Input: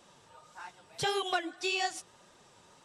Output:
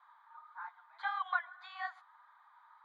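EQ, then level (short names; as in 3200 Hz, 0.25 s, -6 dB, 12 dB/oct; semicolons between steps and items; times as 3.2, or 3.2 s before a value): running mean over 16 samples; steep high-pass 940 Hz 48 dB/oct; air absorption 460 m; +9.0 dB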